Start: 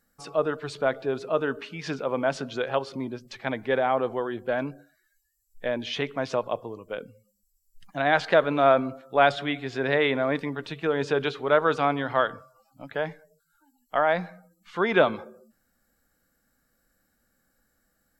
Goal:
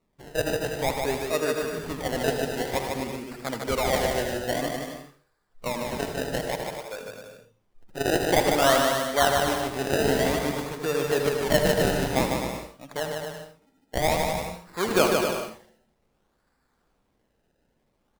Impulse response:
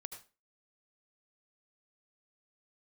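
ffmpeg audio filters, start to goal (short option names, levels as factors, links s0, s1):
-filter_complex "[0:a]asettb=1/sr,asplit=3[s0][s1][s2];[s0]atrim=end=6.364[s3];[s1]atrim=start=6.36:end=6.99,asetpts=PTS-STARTPTS,afade=t=in:d=0.004:c=qsin,afade=t=out:st=0.626:d=0.004:c=qsin,highpass=f=460:w=0.5412,highpass=f=460:w=1.3066[s4];[s2]atrim=start=6.986[s5];[s3][s4]acrossfade=d=0.004:c1=hsin:c2=qsin[s6];[s6][s5]acrossfade=d=0.004:c1=qsin:c2=hsin,acrusher=samples=27:mix=1:aa=0.000001:lfo=1:lforange=27:lforate=0.53,aecho=1:1:150|255|328.5|380|416:0.631|0.398|0.251|0.158|0.1[s7];[1:a]atrim=start_sample=2205,afade=t=out:st=0.14:d=0.01,atrim=end_sample=6615[s8];[s7][s8]afir=irnorm=-1:irlink=0,volume=1.33"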